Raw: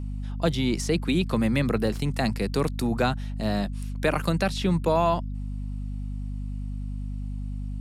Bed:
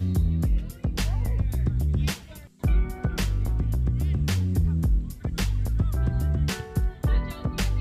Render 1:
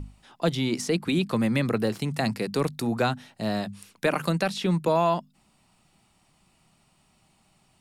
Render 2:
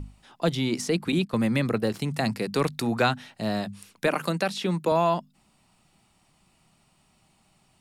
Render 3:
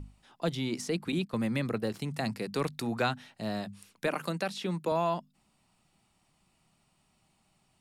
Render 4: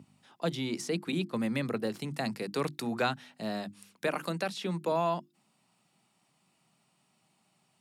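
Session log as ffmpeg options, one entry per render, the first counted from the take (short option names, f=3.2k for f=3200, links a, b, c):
-af "bandreject=f=50:t=h:w=6,bandreject=f=100:t=h:w=6,bandreject=f=150:t=h:w=6,bandreject=f=200:t=h:w=6,bandreject=f=250:t=h:w=6"
-filter_complex "[0:a]asettb=1/sr,asplit=3[a][b][c];[a]atrim=end=1.124[d];[b]atrim=start=1.12:end=1.94,asetpts=PTS-STARTPTS,afade=t=in:d=0.004:c=qsin,afade=t=out:st=0.816:d=0.004:c=qsin,agate=range=-11dB:threshold=-29dB:ratio=16:release=100:detection=peak[e];[c]atrim=start=1.936[f];[d][e]acrossfade=d=0.004:c1=hsin:c2=qsin[g];[g][f]acrossfade=d=0.004:c1=qsin:c2=hsin,asettb=1/sr,asplit=3[h][i][j];[h]atrim=end=2.554[k];[i]atrim=start=2.55:end=3.41,asetpts=PTS-STARTPTS,afade=t=in:d=0.004:c=qsin,afade=t=out:st=0.856:d=0.004:c=qsin,equalizer=f=2.3k:w=0.46:g=5[l];[j]atrim=start=3.406[m];[k][l]acrossfade=d=0.004:c1=hsin:c2=qsin[n];[n][m]acrossfade=d=0.004:c1=qsin:c2=hsin,asettb=1/sr,asplit=3[o][p][q];[o]atrim=end=4.084[r];[p]atrim=start=4.08:end=4.92,asetpts=PTS-STARTPTS,afade=t=in:d=0.004:c=qsin,afade=t=out:st=0.836:d=0.004:c=qsin,highpass=180[s];[q]atrim=start=4.916[t];[r][s]acrossfade=d=0.004:c1=hsin:c2=qsin[u];[u][t]acrossfade=d=0.004:c1=qsin:c2=hsin"
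-af "volume=-6.5dB"
-af "highpass=f=130:w=0.5412,highpass=f=130:w=1.3066,bandreject=f=50:t=h:w=6,bandreject=f=100:t=h:w=6,bandreject=f=150:t=h:w=6,bandreject=f=200:t=h:w=6,bandreject=f=250:t=h:w=6,bandreject=f=300:t=h:w=6,bandreject=f=350:t=h:w=6"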